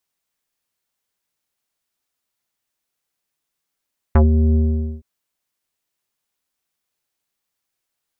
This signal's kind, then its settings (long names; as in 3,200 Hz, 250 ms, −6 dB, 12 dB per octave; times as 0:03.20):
subtractive voice square D#2 24 dB per octave, low-pass 360 Hz, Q 1.1, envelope 2.5 octaves, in 0.09 s, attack 4 ms, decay 0.14 s, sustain −5 dB, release 0.47 s, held 0.40 s